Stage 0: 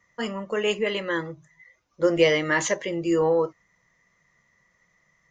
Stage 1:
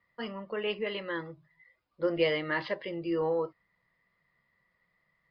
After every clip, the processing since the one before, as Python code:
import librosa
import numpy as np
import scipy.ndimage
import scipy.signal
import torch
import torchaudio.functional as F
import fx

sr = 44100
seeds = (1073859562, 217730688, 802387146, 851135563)

y = scipy.signal.sosfilt(scipy.signal.cheby1(8, 1.0, 5000.0, 'lowpass', fs=sr, output='sos'), x)
y = y * librosa.db_to_amplitude(-7.5)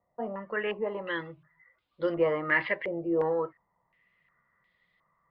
y = fx.filter_held_lowpass(x, sr, hz=2.8, low_hz=720.0, high_hz=3500.0)